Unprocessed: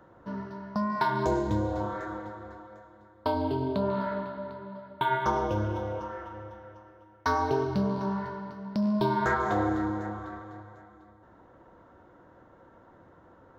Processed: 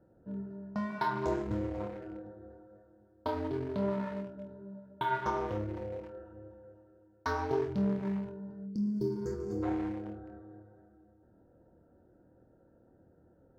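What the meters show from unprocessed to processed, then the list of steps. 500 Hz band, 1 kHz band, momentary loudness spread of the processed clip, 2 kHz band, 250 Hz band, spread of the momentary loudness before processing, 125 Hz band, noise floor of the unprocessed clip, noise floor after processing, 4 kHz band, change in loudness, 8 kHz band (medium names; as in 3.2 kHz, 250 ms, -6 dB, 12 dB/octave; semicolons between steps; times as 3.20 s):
-5.0 dB, -8.0 dB, 17 LU, -8.0 dB, -4.0 dB, 17 LU, -6.0 dB, -57 dBFS, -65 dBFS, -8.0 dB, -5.5 dB, no reading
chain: local Wiener filter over 41 samples; time-frequency box 8.66–9.63 s, 510–4400 Hz -23 dB; flutter echo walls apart 4.3 m, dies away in 0.22 s; trim -5.5 dB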